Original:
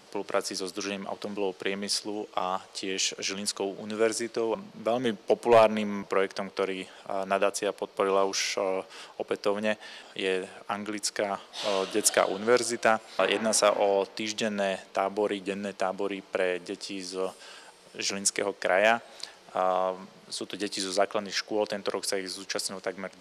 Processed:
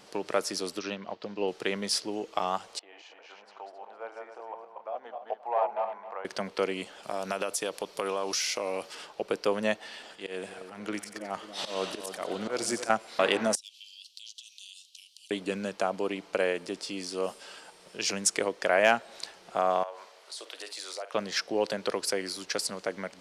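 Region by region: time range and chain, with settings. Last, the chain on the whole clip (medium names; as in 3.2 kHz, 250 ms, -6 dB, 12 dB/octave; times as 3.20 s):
0.79–1.48 s: low-pass 5.5 kHz 24 dB/octave + upward expansion, over -47 dBFS
2.79–6.25 s: backward echo that repeats 133 ms, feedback 44%, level -2.5 dB + ladder band-pass 900 Hz, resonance 60%
7.03–8.95 s: treble shelf 3.3 kHz +9.5 dB + compression 4:1, threshold -27 dBFS
9.76–12.90 s: slow attack 207 ms + two-band feedback delay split 1.4 kHz, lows 271 ms, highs 90 ms, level -9.5 dB
13.55–15.31 s: steep high-pass 2.9 kHz 72 dB/octave + compression, threshold -42 dBFS
19.83–21.14 s: high-pass 490 Hz 24 dB/octave + compression 3:1, threshold -38 dBFS + doubling 50 ms -12 dB
whole clip: none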